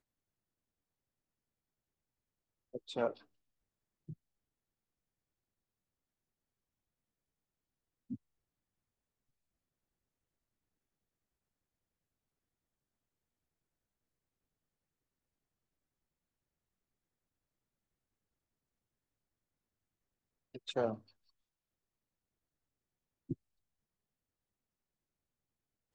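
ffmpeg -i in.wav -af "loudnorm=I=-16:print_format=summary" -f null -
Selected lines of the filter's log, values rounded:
Input Integrated:    -41.7 LUFS
Input True Peak:     -21.9 dBTP
Input LRA:            12.4 LU
Input Threshold:     -53.0 LUFS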